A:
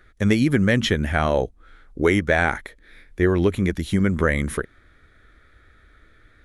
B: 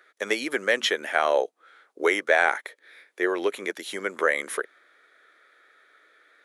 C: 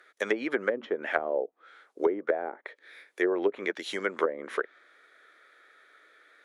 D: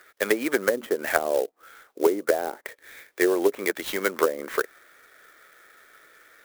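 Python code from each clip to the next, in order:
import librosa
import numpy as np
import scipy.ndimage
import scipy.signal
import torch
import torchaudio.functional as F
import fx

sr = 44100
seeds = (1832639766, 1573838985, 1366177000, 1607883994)

y1 = scipy.signal.sosfilt(scipy.signal.butter(4, 430.0, 'highpass', fs=sr, output='sos'), x)
y2 = fx.env_lowpass_down(y1, sr, base_hz=410.0, full_db=-19.0)
y3 = fx.clock_jitter(y2, sr, seeds[0], jitter_ms=0.038)
y3 = F.gain(torch.from_numpy(y3), 5.0).numpy()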